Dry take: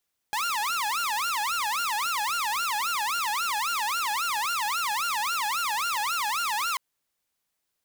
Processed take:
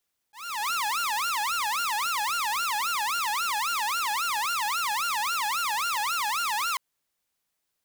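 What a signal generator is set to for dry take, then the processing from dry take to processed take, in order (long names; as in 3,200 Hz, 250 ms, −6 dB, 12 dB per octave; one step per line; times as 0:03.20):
siren wail 825–1,410 Hz 3.7 per second saw −23 dBFS 6.44 s
volume swells 359 ms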